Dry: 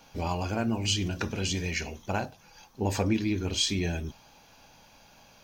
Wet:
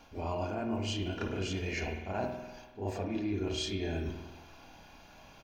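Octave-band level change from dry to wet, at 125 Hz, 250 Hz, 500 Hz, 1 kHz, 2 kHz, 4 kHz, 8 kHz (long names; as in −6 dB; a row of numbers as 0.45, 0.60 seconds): −6.0, −5.5, −2.0, −4.5, −6.0, −9.0, −13.0 decibels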